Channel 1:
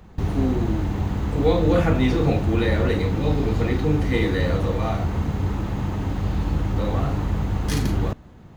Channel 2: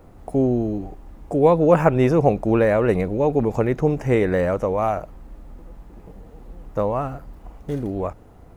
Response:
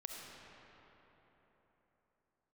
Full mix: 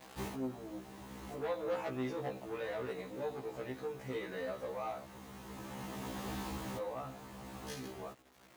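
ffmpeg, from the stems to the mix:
-filter_complex "[0:a]bandreject=f=1400:w=18,acrusher=bits=6:mix=0:aa=0.000001,volume=0.708[s0];[1:a]asoftclip=type=tanh:threshold=0.178,volume=0.211,asplit=2[s1][s2];[s2]apad=whole_len=377886[s3];[s0][s3]sidechaincompress=threshold=0.00398:ratio=8:attack=28:release=1300[s4];[s4][s1]amix=inputs=2:normalize=0,highpass=f=510:p=1,afftfilt=real='re*1.73*eq(mod(b,3),0)':imag='im*1.73*eq(mod(b,3),0)':win_size=2048:overlap=0.75"

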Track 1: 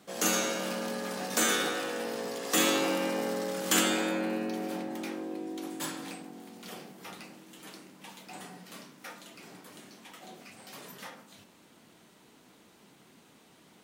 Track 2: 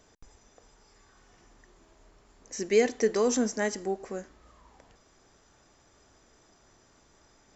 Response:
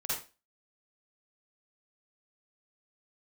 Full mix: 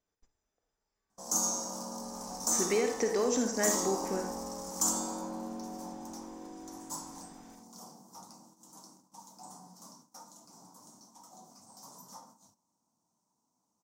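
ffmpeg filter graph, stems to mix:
-filter_complex "[0:a]bass=f=250:g=-2,treble=f=4000:g=11,acontrast=24,firequalizer=gain_entry='entry(250,0);entry(390,-10);entry(950,7);entry(1700,-23);entry(2600,-29);entry(5700,0);entry(10000,-12)':delay=0.05:min_phase=1,adelay=1100,volume=0.299,asplit=2[s0][s1];[s1]volume=0.106[s2];[1:a]acompressor=threshold=0.0355:ratio=4,volume=0.891,afade=t=in:st=1.98:d=0.25:silence=0.251189,asplit=2[s3][s4];[s4]volume=0.501[s5];[2:a]atrim=start_sample=2205[s6];[s2][s5]amix=inputs=2:normalize=0[s7];[s7][s6]afir=irnorm=-1:irlink=0[s8];[s0][s3][s8]amix=inputs=3:normalize=0,agate=range=0.158:threshold=0.00126:ratio=16:detection=peak"

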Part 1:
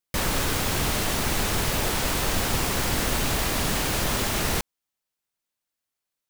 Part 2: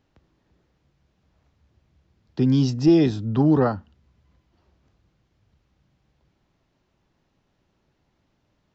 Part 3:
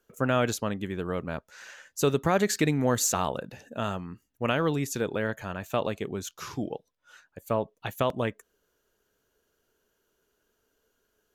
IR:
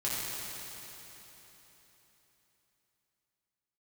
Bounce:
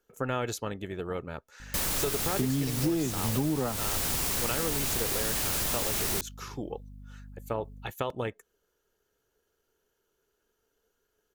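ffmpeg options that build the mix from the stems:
-filter_complex "[0:a]highshelf=f=4900:g=11.5,aeval=exprs='val(0)+0.0126*(sin(2*PI*50*n/s)+sin(2*PI*2*50*n/s)/2+sin(2*PI*3*50*n/s)/3+sin(2*PI*4*50*n/s)/4+sin(2*PI*5*50*n/s)/5)':c=same,adelay=1600,volume=0.447[s0];[1:a]aeval=exprs='sgn(val(0))*max(abs(val(0))-0.00251,0)':c=same,volume=1.26[s1];[2:a]aecho=1:1:2.3:0.37,tremolo=f=250:d=0.4,volume=0.794[s2];[s0][s1][s2]amix=inputs=3:normalize=0,acompressor=threshold=0.0562:ratio=10"

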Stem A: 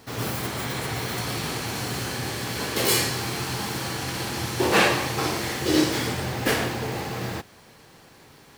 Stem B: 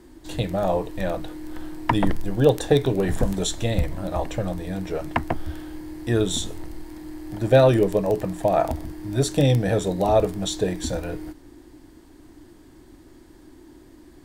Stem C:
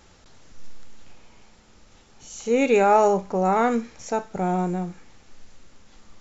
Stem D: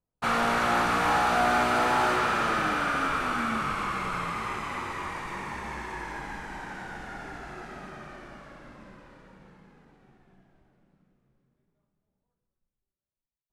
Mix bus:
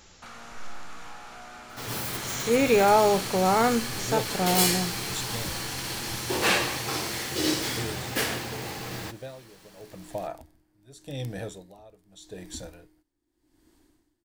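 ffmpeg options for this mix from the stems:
-filter_complex "[0:a]adelay=1700,volume=0.447[s0];[1:a]aeval=exprs='val(0)*pow(10,-22*(0.5-0.5*cos(2*PI*0.83*n/s))/20)':c=same,adelay=1700,volume=0.224[s1];[2:a]deesser=0.9,volume=0.794[s2];[3:a]acompressor=threshold=0.0141:ratio=2.5,volume=0.237[s3];[s0][s1][s2][s3]amix=inputs=4:normalize=0,highshelf=f=2200:g=7.5"

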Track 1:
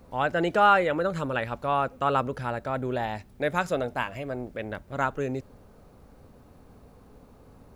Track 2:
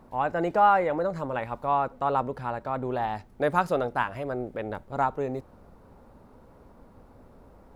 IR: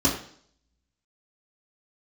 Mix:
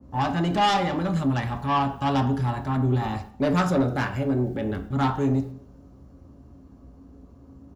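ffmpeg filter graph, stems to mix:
-filter_complex "[0:a]bandreject=f=2500:w=22,aeval=exprs='0.376*sin(PI/2*2.82*val(0)/0.376)':c=same,volume=0.178,asplit=2[s0][s1];[s1]volume=0.133[s2];[1:a]afwtdn=0.0355,adelay=1.2,volume=0.841,asplit=3[s3][s4][s5];[s4]volume=0.188[s6];[s5]apad=whole_len=342075[s7];[s0][s7]sidechaingate=range=0.0224:threshold=0.00355:ratio=16:detection=peak[s8];[2:a]atrim=start_sample=2205[s9];[s2][s6]amix=inputs=2:normalize=0[s10];[s10][s9]afir=irnorm=-1:irlink=0[s11];[s8][s3][s11]amix=inputs=3:normalize=0,lowshelf=f=160:g=3,asoftclip=type=tanh:threshold=0.178,adynamicequalizer=threshold=0.0112:dfrequency=2100:dqfactor=0.7:tfrequency=2100:tqfactor=0.7:attack=5:release=100:ratio=0.375:range=2.5:mode=boostabove:tftype=highshelf"

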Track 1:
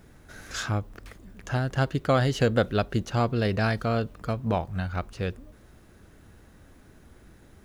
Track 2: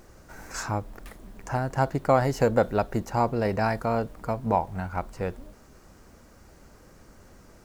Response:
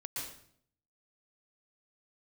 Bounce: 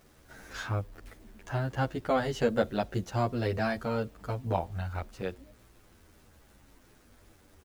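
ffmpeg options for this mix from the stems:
-filter_complex "[0:a]equalizer=f=160:w=6.6:g=-12,acrusher=bits=8:mix=0:aa=0.000001,volume=0.562[s0];[1:a]volume=0.299[s1];[s0][s1]amix=inputs=2:normalize=0,asplit=2[s2][s3];[s3]adelay=10.2,afreqshift=-0.81[s4];[s2][s4]amix=inputs=2:normalize=1"

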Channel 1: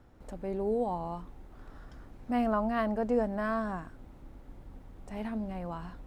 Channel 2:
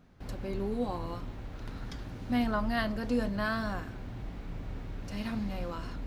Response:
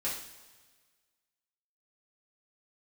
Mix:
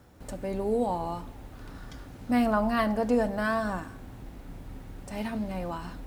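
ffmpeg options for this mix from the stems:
-filter_complex "[0:a]highpass=63,highshelf=f=4400:g=12,volume=1.33,asplit=2[s0][s1];[s1]volume=0.178[s2];[1:a]volume=0.562[s3];[2:a]atrim=start_sample=2205[s4];[s2][s4]afir=irnorm=-1:irlink=0[s5];[s0][s3][s5]amix=inputs=3:normalize=0"

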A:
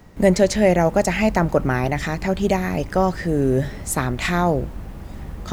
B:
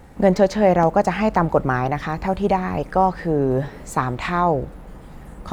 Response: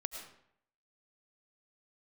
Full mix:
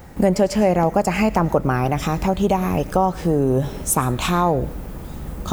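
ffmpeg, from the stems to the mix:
-filter_complex "[0:a]aemphasis=mode=production:type=50kf,volume=0.531,asplit=2[s0][s1];[s1]volume=0.422[s2];[1:a]volume=1.41,asplit=2[s3][s4];[s4]apad=whole_len=243622[s5];[s0][s5]sidechaincompress=threshold=0.112:ratio=8:attack=16:release=180[s6];[2:a]atrim=start_sample=2205[s7];[s2][s7]afir=irnorm=-1:irlink=0[s8];[s6][s3][s8]amix=inputs=3:normalize=0,acompressor=threshold=0.158:ratio=2"

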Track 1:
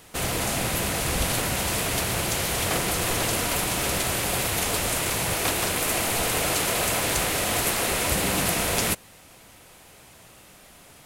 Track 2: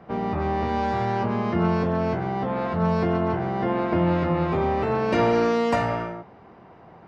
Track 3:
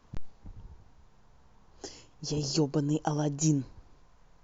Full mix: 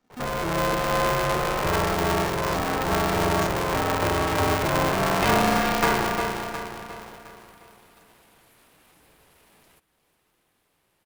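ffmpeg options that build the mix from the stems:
-filter_complex "[0:a]equalizer=f=6700:t=o:w=0.93:g=-7,alimiter=limit=0.126:level=0:latency=1:release=24,acompressor=threshold=0.00794:ratio=2.5,adelay=850,volume=0.106,asplit=2[s0][s1];[s1]volume=0.158[s2];[1:a]equalizer=f=220:w=0.84:g=-9.5,adelay=100,volume=1.33,asplit=2[s3][s4];[s4]volume=0.473[s5];[2:a]volume=0.282[s6];[s2][s5]amix=inputs=2:normalize=0,aecho=0:1:357|714|1071|1428|1785|2142|2499:1|0.47|0.221|0.104|0.0488|0.0229|0.0108[s7];[s0][s3][s6][s7]amix=inputs=4:normalize=0,aeval=exprs='val(0)*sgn(sin(2*PI*250*n/s))':c=same"

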